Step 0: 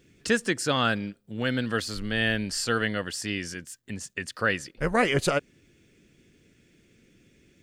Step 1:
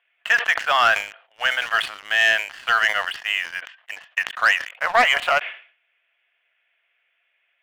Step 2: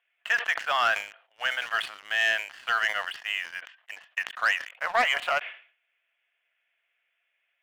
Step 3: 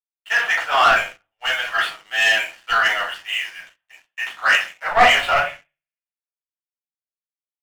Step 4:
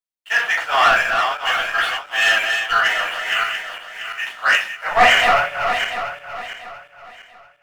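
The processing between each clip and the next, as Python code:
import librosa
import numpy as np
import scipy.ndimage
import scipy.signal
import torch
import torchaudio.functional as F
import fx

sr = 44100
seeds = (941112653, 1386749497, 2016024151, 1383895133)

y1 = scipy.signal.sosfilt(scipy.signal.cheby1(4, 1.0, [670.0, 3100.0], 'bandpass', fs=sr, output='sos'), x)
y1 = fx.leveller(y1, sr, passes=2)
y1 = fx.sustainer(y1, sr, db_per_s=130.0)
y1 = F.gain(torch.from_numpy(y1), 4.5).numpy()
y2 = fx.low_shelf(y1, sr, hz=110.0, db=-6.5)
y2 = F.gain(torch.from_numpy(y2), -7.0).numpy()
y3 = fx.room_shoebox(y2, sr, seeds[0], volume_m3=210.0, walls='furnished', distance_m=4.4)
y3 = fx.leveller(y3, sr, passes=2)
y3 = fx.band_widen(y3, sr, depth_pct=100)
y3 = F.gain(torch.from_numpy(y3), -7.0).numpy()
y4 = fx.reverse_delay_fb(y3, sr, ms=344, feedback_pct=55, wet_db=-5)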